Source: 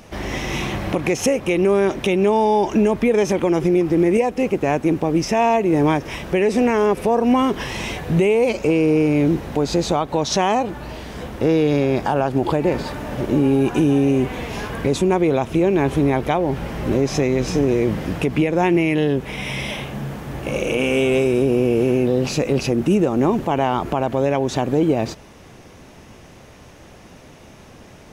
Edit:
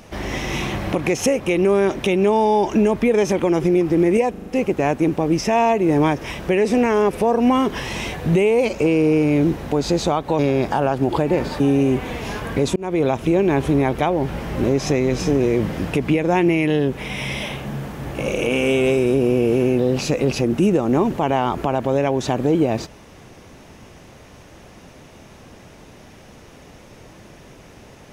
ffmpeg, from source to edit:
-filter_complex "[0:a]asplit=8[a][b][c][d][e][f][g][h];[a]atrim=end=4.342[i];[b]atrim=start=4.298:end=4.342[j];[c]atrim=start=4.298:end=4.342[k];[d]atrim=start=4.298:end=4.342[l];[e]atrim=start=4.298:end=10.232[m];[f]atrim=start=11.728:end=12.942[n];[g]atrim=start=13.878:end=15.04,asetpts=PTS-STARTPTS,afade=t=out:st=1.158:d=0.004:c=hsin[o];[h]atrim=start=15.04,asetpts=PTS-STARTPTS,afade=t=in:d=0.27[p];[i][j]acrossfade=d=0.004:c1=hsin:c2=hsin[q];[q][k]acrossfade=d=0.004:c1=hsin:c2=hsin[r];[r][l]acrossfade=d=0.004:c1=hsin:c2=hsin[s];[s][m]acrossfade=d=0.004:c1=hsin:c2=hsin[t];[t][n]acrossfade=d=0.004:c1=hsin:c2=hsin[u];[o][p]concat=n=2:v=0:a=1[v];[u][v]acrossfade=d=0.004:c1=hsin:c2=hsin"

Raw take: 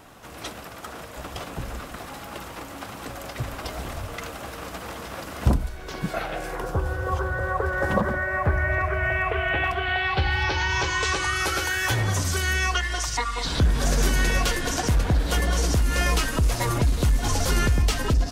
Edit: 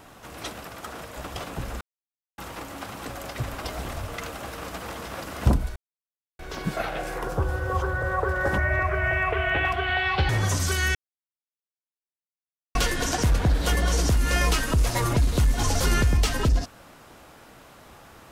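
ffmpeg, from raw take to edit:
-filter_complex "[0:a]asplit=8[a][b][c][d][e][f][g][h];[a]atrim=end=1.81,asetpts=PTS-STARTPTS,afade=t=out:st=1.806:d=0.004:c=hsin[i];[b]atrim=start=1.81:end=2.38,asetpts=PTS-STARTPTS,volume=0[j];[c]atrim=start=2.38:end=5.76,asetpts=PTS-STARTPTS,afade=t=in:d=0.004:c=hsin,afade=t=out:st=3.376:d=0.004:c=hsin,apad=pad_dur=0.63[k];[d]atrim=start=5.76:end=7.952,asetpts=PTS-STARTPTS,afade=t=in:d=0.004:c=hsin[l];[e]atrim=start=8.568:end=10.282[m];[f]atrim=start=11.938:end=12.6,asetpts=PTS-STARTPTS,afade=t=out:st=0.658:d=0.004:c=hsin[n];[g]atrim=start=12.6:end=14.4,asetpts=PTS-STARTPTS,volume=0[o];[h]atrim=start=14.4,asetpts=PTS-STARTPTS,afade=t=in:d=0.004:c=hsin[p];[i][j][k][l]concat=n=4:v=0:a=1[q];[q][m]acrossfade=d=0.004:c1=hsin:c2=hsin[r];[n][o][p]concat=n=3:v=0:a=1[s];[r][s]acrossfade=d=0.004:c1=hsin:c2=hsin"

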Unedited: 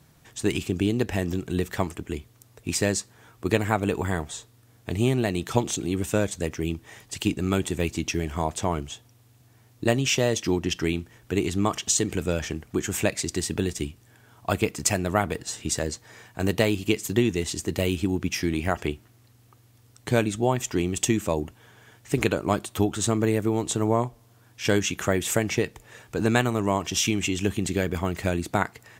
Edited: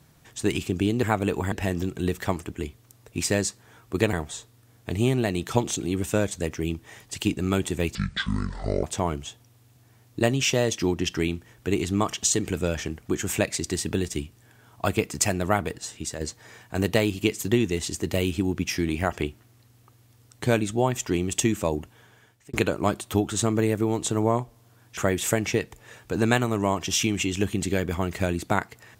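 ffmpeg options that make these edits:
-filter_complex "[0:a]asplit=9[a][b][c][d][e][f][g][h][i];[a]atrim=end=1.032[j];[b]atrim=start=3.638:end=4.132[k];[c]atrim=start=1.028:end=3.642[l];[d]atrim=start=4.128:end=7.954[m];[e]atrim=start=7.95:end=8.48,asetpts=PTS-STARTPTS,asetrate=26460,aresample=44100[n];[f]atrim=start=8.476:end=15.85,asetpts=PTS-STARTPTS,afade=t=out:st=6.744:d=0.63:silence=0.398107[o];[g]atrim=start=15.85:end=22.18,asetpts=PTS-STARTPTS,afade=t=in:d=0.004:c=hsin:silence=0.398107,afade=t=out:st=5.55:d=0.78:c=qsin[p];[h]atrim=start=22.18:end=24.622,asetpts=PTS-STARTPTS,afade=t=in:d=0.004:c=hsin[q];[i]atrim=start=25.008[r];[j][k]acrossfade=d=0.004:c1=hsin:c2=hsin[s];[s][l]acrossfade=d=0.004:c1=hsin:c2=hsin[t];[t][m]acrossfade=d=0.004:c1=hsin:c2=hsin[u];[u][n]acrossfade=d=0.004:c1=hsin:c2=hsin[v];[o][p][q]concat=n=3:v=0:a=1[w];[v][w]acrossfade=d=0.004:c1=hsin:c2=hsin[x];[x][r]acrossfade=d=0.004:c1=hsin:c2=hsin"

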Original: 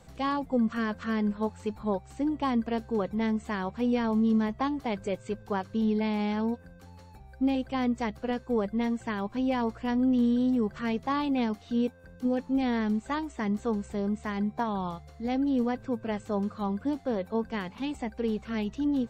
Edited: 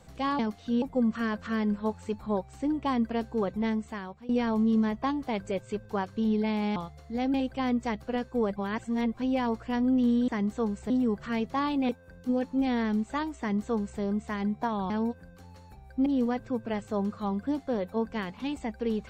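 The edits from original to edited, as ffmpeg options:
-filter_complex "[0:a]asplit=13[a][b][c][d][e][f][g][h][i][j][k][l][m];[a]atrim=end=0.392[n];[b]atrim=start=11.418:end=11.852[o];[c]atrim=start=0.388:end=3.86,asetpts=PTS-STARTPTS,afade=t=out:st=2.822:d=0.65:silence=0.1[p];[d]atrim=start=3.86:end=6.332,asetpts=PTS-STARTPTS,afade=t=in:d=0.004:c=hsin:silence=0.1[q];[e]atrim=start=14.858:end=15.442[r];[f]atrim=start=7.488:end=8.712[s];[g]atrim=start=8.708:end=9.292,asetpts=PTS-STARTPTS,areverse[t];[h]atrim=start=9.288:end=10.432[u];[i]atrim=start=13.348:end=13.972[v];[j]atrim=start=10.428:end=11.422[w];[k]atrim=start=11.848:end=14.862[x];[l]atrim=start=6.328:end=7.492[y];[m]atrim=start=15.438[z];[n][o]acrossfade=d=0.004:c1=hsin:c2=hsin[aa];[p][q]concat=n=2:v=0:a=1[ab];[aa][ab]acrossfade=d=0.004:c1=hsin:c2=hsin[ac];[ac][r]acrossfade=d=0.004:c1=hsin:c2=hsin[ad];[ad][s]acrossfade=d=0.004:c1=hsin:c2=hsin[ae];[ae][t]acrossfade=d=0.004:c1=hsin:c2=hsin[af];[af][u]acrossfade=d=0.004:c1=hsin:c2=hsin[ag];[ag][v]acrossfade=d=0.004:c1=hsin:c2=hsin[ah];[ah][w]acrossfade=d=0.004:c1=hsin:c2=hsin[ai];[ai][x]acrossfade=d=0.004:c1=hsin:c2=hsin[aj];[aj][y]acrossfade=d=0.004:c1=hsin:c2=hsin[ak];[ak][z]acrossfade=d=0.004:c1=hsin:c2=hsin"

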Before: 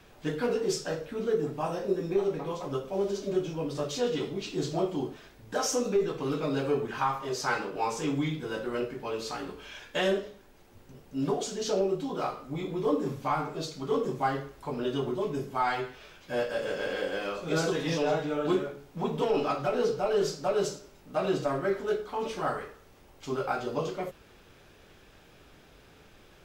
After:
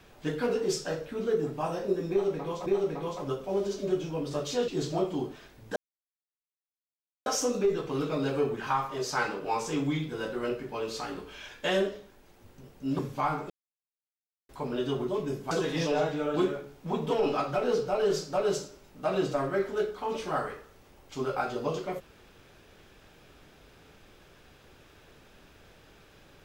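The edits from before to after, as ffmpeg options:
-filter_complex "[0:a]asplit=8[a][b][c][d][e][f][g][h];[a]atrim=end=2.662[i];[b]atrim=start=2.098:end=4.122[j];[c]atrim=start=4.488:end=5.57,asetpts=PTS-STARTPTS,afade=t=out:st=1.078:d=0.004:c=hsin,apad=pad_dur=1.5[k];[d]atrim=start=5.57:end=11.302,asetpts=PTS-STARTPTS,afade=t=in:d=0.004:c=hsin[l];[e]atrim=start=13.058:end=13.57,asetpts=PTS-STARTPTS,afade=t=out:st=0.508:d=0.004:c=hsin[m];[f]atrim=start=13.57:end=14.56,asetpts=PTS-STARTPTS,volume=0[n];[g]atrim=start=14.56:end=15.582,asetpts=PTS-STARTPTS,afade=t=in:d=0.004:c=hsin[o];[h]atrim=start=17.618[p];[i][j]acrossfade=d=0.004:c1=hsin:c2=hsin[q];[k][l]concat=n=2:v=0:a=1[r];[q][r]acrossfade=d=0.004:c1=hsin:c2=hsin[s];[m][n][o]concat=n=3:v=0:a=1[t];[s][t]acrossfade=d=0.004:c1=hsin:c2=hsin[u];[u][p]acrossfade=d=0.004:c1=hsin:c2=hsin"

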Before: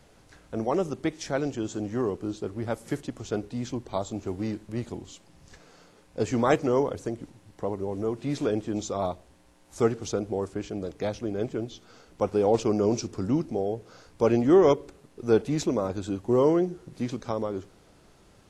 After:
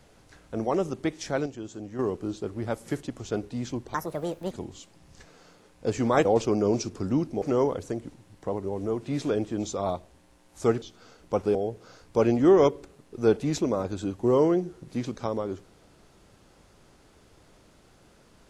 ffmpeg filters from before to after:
-filter_complex "[0:a]asplit=9[a][b][c][d][e][f][g][h][i];[a]atrim=end=1.462[j];[b]atrim=start=1.458:end=1.992,asetpts=PTS-STARTPTS,volume=-7dB[k];[c]atrim=start=1.988:end=3.944[l];[d]atrim=start=3.94:end=4.84,asetpts=PTS-STARTPTS,asetrate=69678,aresample=44100,atrim=end_sample=25120,asetpts=PTS-STARTPTS[m];[e]atrim=start=4.836:end=6.582[n];[f]atrim=start=12.428:end=13.602[o];[g]atrim=start=6.578:end=9.982[p];[h]atrim=start=11.698:end=12.432[q];[i]atrim=start=13.598[r];[j][k]acrossfade=d=0.004:c1=hsin:c2=hsin[s];[s][l]acrossfade=d=0.004:c1=hsin:c2=hsin[t];[t][m]acrossfade=d=0.004:c1=hsin:c2=hsin[u];[u][n]acrossfade=d=0.004:c1=hsin:c2=hsin[v];[v][o]acrossfade=d=0.004:c1=hsin:c2=hsin[w];[w][p]acrossfade=d=0.004:c1=hsin:c2=hsin[x];[x][q]acrossfade=d=0.004:c1=hsin:c2=hsin[y];[y][r]acrossfade=d=0.004:c1=hsin:c2=hsin"

